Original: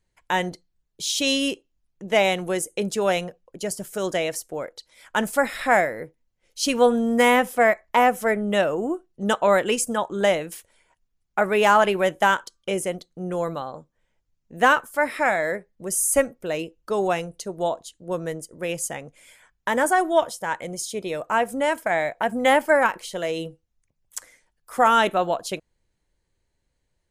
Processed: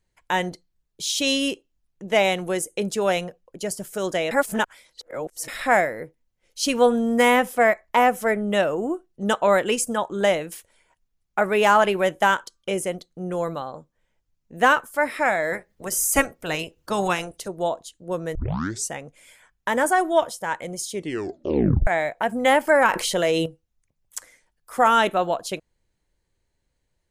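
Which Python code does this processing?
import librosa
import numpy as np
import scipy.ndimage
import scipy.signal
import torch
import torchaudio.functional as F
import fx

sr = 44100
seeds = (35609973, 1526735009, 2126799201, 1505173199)

y = fx.spec_clip(x, sr, under_db=16, at=(15.51, 17.47), fade=0.02)
y = fx.env_flatten(y, sr, amount_pct=50, at=(22.67, 23.46))
y = fx.edit(y, sr, fx.reverse_span(start_s=4.31, length_s=1.17),
    fx.tape_start(start_s=18.35, length_s=0.56),
    fx.tape_stop(start_s=20.91, length_s=0.96), tone=tone)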